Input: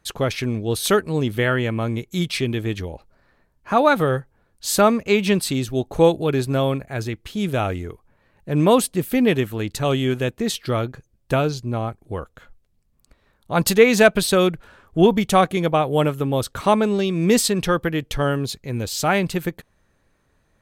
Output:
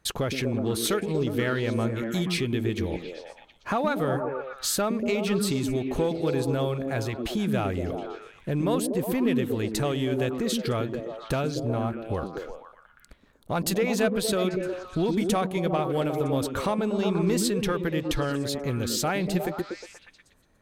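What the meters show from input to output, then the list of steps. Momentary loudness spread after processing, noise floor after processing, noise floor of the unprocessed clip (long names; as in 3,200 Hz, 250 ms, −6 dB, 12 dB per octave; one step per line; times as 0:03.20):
8 LU, −59 dBFS, −65 dBFS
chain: downward compressor 3 to 1, threshold −31 dBFS, peak gain reduction 17.5 dB
leveller curve on the samples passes 1
echo through a band-pass that steps 120 ms, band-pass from 250 Hz, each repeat 0.7 octaves, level 0 dB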